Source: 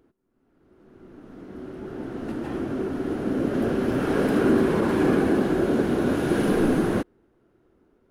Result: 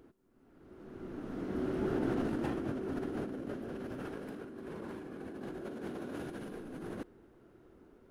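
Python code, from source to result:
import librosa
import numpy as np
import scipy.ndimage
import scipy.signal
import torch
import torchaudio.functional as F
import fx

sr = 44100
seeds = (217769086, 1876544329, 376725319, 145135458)

y = fx.low_shelf(x, sr, hz=100.0, db=-9.0, at=(5.62, 6.2))
y = fx.over_compress(y, sr, threshold_db=-34.0, ratio=-1.0)
y = y * 10.0 ** (-6.0 / 20.0)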